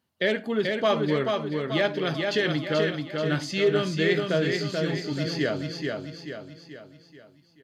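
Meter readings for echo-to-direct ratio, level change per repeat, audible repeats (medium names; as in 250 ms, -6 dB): -3.0 dB, -6.5 dB, 5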